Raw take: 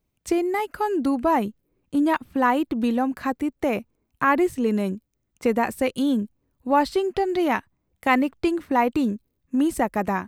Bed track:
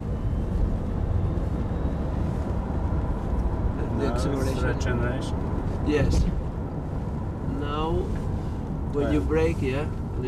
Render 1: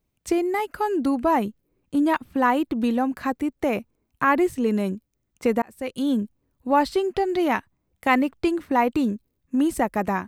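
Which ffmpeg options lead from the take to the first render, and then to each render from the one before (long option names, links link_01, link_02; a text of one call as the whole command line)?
ffmpeg -i in.wav -filter_complex "[0:a]asplit=2[link_01][link_02];[link_01]atrim=end=5.62,asetpts=PTS-STARTPTS,afade=type=out:start_time=5.616:duration=0.004:curve=hsin[link_03];[link_02]atrim=start=5.62,asetpts=PTS-STARTPTS,afade=type=in:duration=0.52[link_04];[link_03][link_04]concat=n=2:v=0:a=1" out.wav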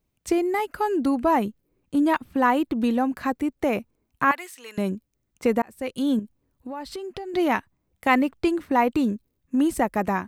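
ffmpeg -i in.wav -filter_complex "[0:a]asettb=1/sr,asplit=3[link_01][link_02][link_03];[link_01]atrim=end=4.314[link_04];[link_02]atrim=start=4.31:end=4.78,asetpts=PTS-STARTPTS,afade=type=in:duration=0.004:curve=qsin,afade=type=out:start_time=0.466:duration=0.004:curve=qsin,highpass=1400[link_05];[link_03]atrim=start=4.776[link_06];[link_04][link_05]acrossfade=duration=0.004:curve1=hsin:curve2=qsin[link_07];[link_07][link_06]acrossfade=duration=0.004:curve1=qsin:curve2=hsin,asettb=1/sr,asplit=3[link_08][link_09][link_10];[link_08]atrim=end=6.194[link_11];[link_09]atrim=start=6.19:end=7.34,asetpts=PTS-STARTPTS,afade=type=in:duration=0.004:curve=qsin,afade=type=out:start_time=1.146:duration=0.004:curve=qsin,acompressor=threshold=-32dB:ratio=5:attack=3.2:release=140:knee=1:detection=peak[link_12];[link_10]atrim=start=7.336[link_13];[link_11][link_12]acrossfade=duration=0.004:curve1=hsin:curve2=qsin[link_14];[link_14][link_13]acrossfade=duration=0.004:curve1=qsin:curve2=hsin" out.wav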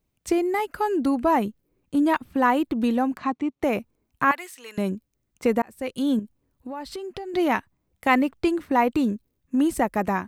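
ffmpeg -i in.wav -filter_complex "[0:a]asettb=1/sr,asplit=3[link_01][link_02][link_03];[link_01]atrim=end=3.174[link_04];[link_02]atrim=start=3.17:end=3.63,asetpts=PTS-STARTPTS,afade=type=in:duration=0.004:curve=qsin,afade=type=out:start_time=0.456:duration=0.004:curve=qsin,highpass=130,equalizer=frequency=500:width_type=q:width=4:gain=-9,equalizer=frequency=1100:width_type=q:width=4:gain=4,equalizer=frequency=1600:width_type=q:width=4:gain=-9,equalizer=frequency=4900:width_type=q:width=4:gain=-8,lowpass=frequency=6000:width=0.5412,lowpass=frequency=6000:width=1.3066[link_05];[link_03]atrim=start=3.626[link_06];[link_04][link_05]acrossfade=duration=0.004:curve1=hsin:curve2=qsin[link_07];[link_07][link_06]acrossfade=duration=0.004:curve1=qsin:curve2=hsin" out.wav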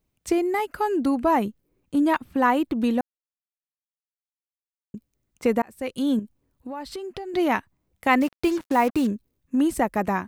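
ffmpeg -i in.wav -filter_complex "[0:a]asettb=1/sr,asplit=3[link_01][link_02][link_03];[link_01]atrim=end=8.214[link_04];[link_02]atrim=start=8.21:end=9.07,asetpts=PTS-STARTPTS,afade=type=in:duration=0.004:curve=qsin,afade=type=out:start_time=0.856:duration=0.004:curve=qsin,acrusher=bits=5:mix=0:aa=0.5[link_05];[link_03]atrim=start=9.066[link_06];[link_04][link_05]acrossfade=duration=0.004:curve1=hsin:curve2=qsin[link_07];[link_07][link_06]acrossfade=duration=0.004:curve1=qsin:curve2=hsin,asplit=3[link_08][link_09][link_10];[link_08]atrim=end=3.01,asetpts=PTS-STARTPTS,afade=type=out:start_time=3.006:duration=0.004:curve=hsin[link_11];[link_09]atrim=start=3.01:end=4.94,asetpts=PTS-STARTPTS,volume=0[link_12];[link_10]atrim=start=4.94,asetpts=PTS-STARTPTS,afade=type=in:duration=0.004:curve=hsin[link_13];[link_11][link_12][link_13]concat=n=3:v=0:a=1" out.wav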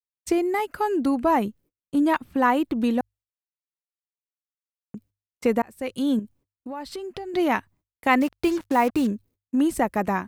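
ffmpeg -i in.wav -af "agate=range=-38dB:threshold=-52dB:ratio=16:detection=peak,bandreject=frequency=50:width_type=h:width=6,bandreject=frequency=100:width_type=h:width=6" out.wav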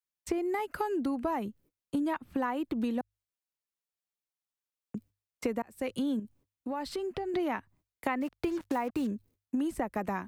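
ffmpeg -i in.wav -filter_complex "[0:a]acrossover=split=190|610|2700[link_01][link_02][link_03][link_04];[link_04]alimiter=level_in=9.5dB:limit=-24dB:level=0:latency=1:release=230,volume=-9.5dB[link_05];[link_01][link_02][link_03][link_05]amix=inputs=4:normalize=0,acompressor=threshold=-29dB:ratio=6" out.wav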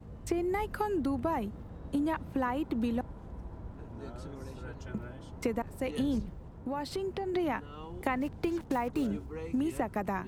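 ffmpeg -i in.wav -i bed.wav -filter_complex "[1:a]volume=-18dB[link_01];[0:a][link_01]amix=inputs=2:normalize=0" out.wav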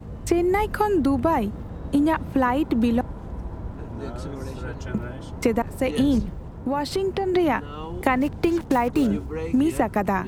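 ffmpeg -i in.wav -af "volume=10.5dB" out.wav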